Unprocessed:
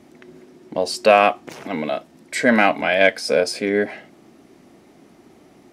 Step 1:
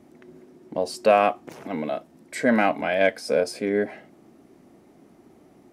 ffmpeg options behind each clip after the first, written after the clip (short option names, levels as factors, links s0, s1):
-af "equalizer=f=3700:w=0.43:g=-7,volume=0.708"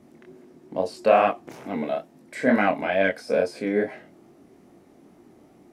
-filter_complex "[0:a]flanger=delay=20:depth=6.5:speed=2.3,acrossover=split=3200[s0][s1];[s1]acompressor=threshold=0.00447:ratio=4:attack=1:release=60[s2];[s0][s2]amix=inputs=2:normalize=0,volume=1.41"